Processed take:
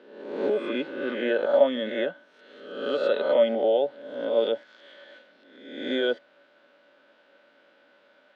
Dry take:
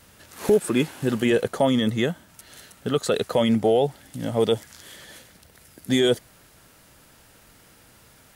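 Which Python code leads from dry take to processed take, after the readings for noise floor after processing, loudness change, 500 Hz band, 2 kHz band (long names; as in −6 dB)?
−61 dBFS, −3.0 dB, −0.5 dB, −1.0 dB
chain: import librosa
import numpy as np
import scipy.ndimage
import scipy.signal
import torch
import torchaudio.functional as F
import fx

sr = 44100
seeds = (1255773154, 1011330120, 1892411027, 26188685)

y = fx.spec_swells(x, sr, rise_s=0.91)
y = scipy.signal.sosfilt(scipy.signal.ellip(3, 1.0, 80, [260.0, 3600.0], 'bandpass', fs=sr, output='sos'), y)
y = fx.small_body(y, sr, hz=(570.0, 1500.0), ring_ms=90, db=17)
y = y * librosa.db_to_amplitude(-8.5)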